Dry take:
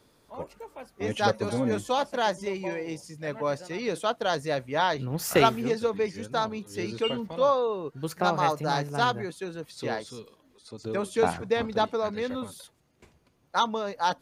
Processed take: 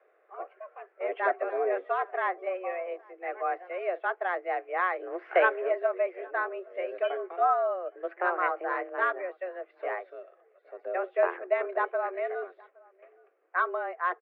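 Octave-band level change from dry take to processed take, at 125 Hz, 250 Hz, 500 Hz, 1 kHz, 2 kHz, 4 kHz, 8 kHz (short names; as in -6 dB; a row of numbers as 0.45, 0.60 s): under -40 dB, -14.5 dB, -2.0 dB, -2.0 dB, +2.5 dB, under -15 dB, under -40 dB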